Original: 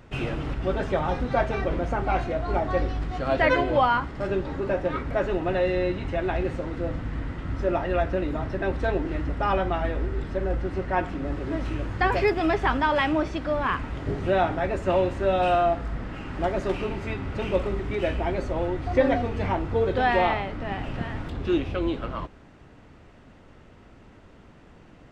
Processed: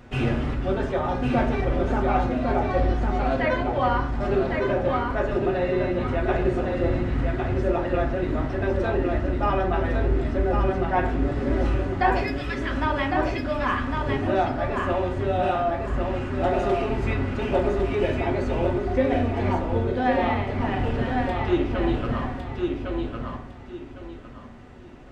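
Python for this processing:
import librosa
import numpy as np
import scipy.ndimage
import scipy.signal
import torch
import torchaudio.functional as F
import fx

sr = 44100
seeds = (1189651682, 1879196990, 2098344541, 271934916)

y = fx.bessel_highpass(x, sr, hz=2000.0, order=8, at=(12.23, 12.77))
y = fx.rider(y, sr, range_db=4, speed_s=0.5)
y = fx.echo_feedback(y, sr, ms=1106, feedback_pct=26, wet_db=-4.0)
y = fx.rev_fdn(y, sr, rt60_s=0.56, lf_ratio=1.35, hf_ratio=0.4, size_ms=24.0, drr_db=2.5)
y = y * 10.0 ** (-2.5 / 20.0)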